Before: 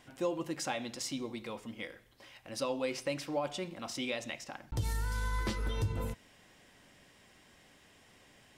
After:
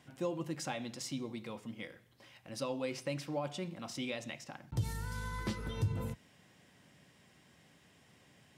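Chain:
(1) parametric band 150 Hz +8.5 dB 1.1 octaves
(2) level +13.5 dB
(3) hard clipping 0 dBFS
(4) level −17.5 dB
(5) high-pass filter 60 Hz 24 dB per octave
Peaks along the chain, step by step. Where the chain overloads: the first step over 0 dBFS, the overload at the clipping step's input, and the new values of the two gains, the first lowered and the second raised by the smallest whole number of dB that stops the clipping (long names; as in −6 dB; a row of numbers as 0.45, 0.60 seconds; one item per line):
−18.0, −4.5, −4.5, −22.0, −23.5 dBFS
no step passes full scale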